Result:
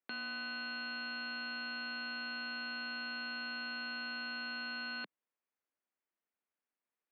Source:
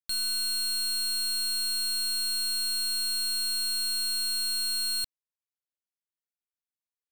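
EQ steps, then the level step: steep high-pass 200 Hz; low-pass 2.7 kHz 24 dB/octave; distance through air 260 m; +8.0 dB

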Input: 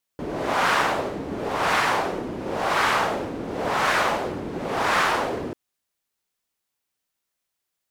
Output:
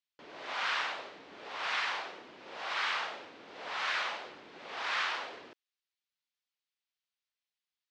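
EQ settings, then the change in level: band-pass filter 3.9 kHz, Q 0.96; distance through air 120 m; -3.0 dB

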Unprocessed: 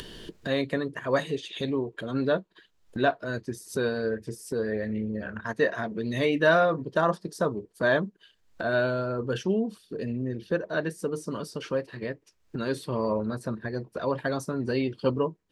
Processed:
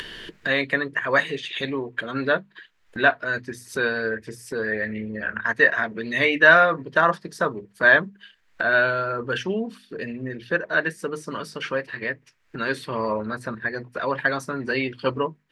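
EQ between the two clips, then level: peaking EQ 1.9 kHz +15 dB 1.7 oct; hum notches 50/100/150/200/250 Hz; hum notches 60/120 Hz; -1.0 dB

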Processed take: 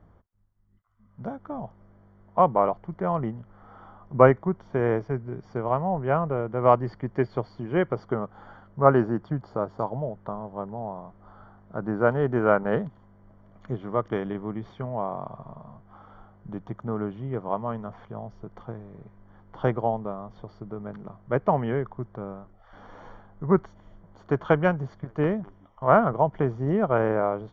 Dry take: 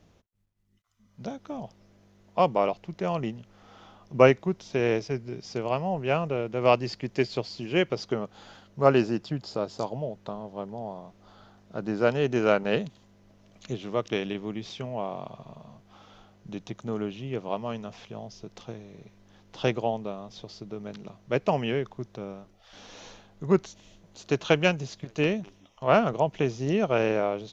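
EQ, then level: Savitzky-Golay filter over 41 samples; bass shelf 140 Hz +11 dB; peaking EQ 1.1 kHz +8 dB 1.4 oct; -2.0 dB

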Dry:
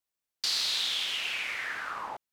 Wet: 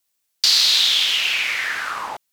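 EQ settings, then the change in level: dynamic bell 9.2 kHz, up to -6 dB, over -51 dBFS, Q 1.4; treble shelf 2.3 kHz +10 dB; +7.0 dB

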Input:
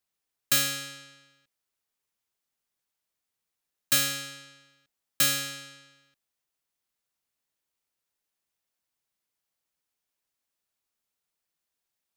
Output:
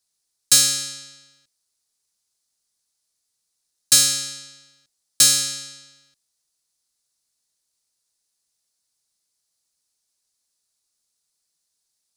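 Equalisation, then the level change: bass shelf 160 Hz +4 dB; high-order bell 6.5 kHz +13.5 dB; 0.0 dB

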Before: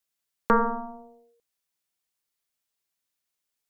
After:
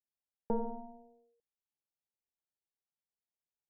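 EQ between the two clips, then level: cascade formant filter u; static phaser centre 1.1 kHz, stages 6; +7.0 dB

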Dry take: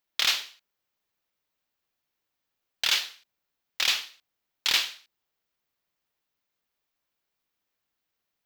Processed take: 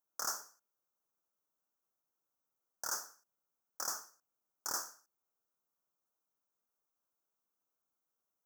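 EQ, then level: elliptic band-stop 1.4–5.9 kHz, stop band 40 dB; bass shelf 84 Hz -10 dB; bass shelf 170 Hz -4.5 dB; -4.0 dB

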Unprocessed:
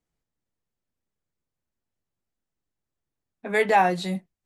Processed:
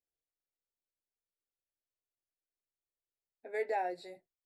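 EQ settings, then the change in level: boxcar filter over 14 samples; tilt EQ +2.5 dB/octave; static phaser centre 470 Hz, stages 4; -8.5 dB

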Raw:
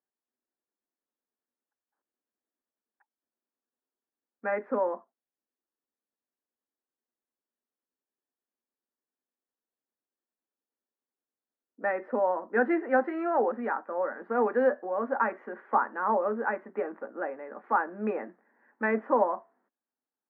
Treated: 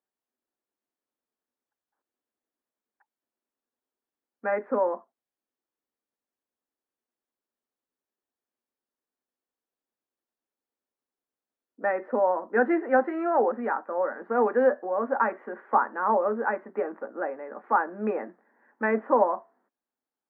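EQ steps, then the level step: bass shelf 360 Hz -4.5 dB; treble shelf 2.3 kHz -10 dB; +5.0 dB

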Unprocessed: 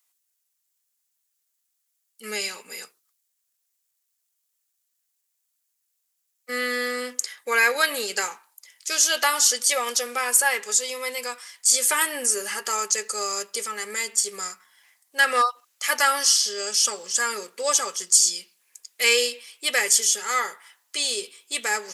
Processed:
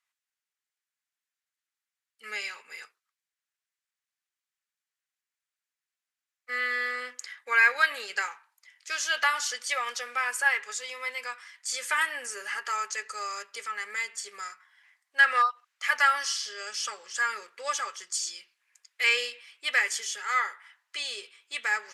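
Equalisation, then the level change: band-pass filter 1.7 kHz, Q 1.3; 0.0 dB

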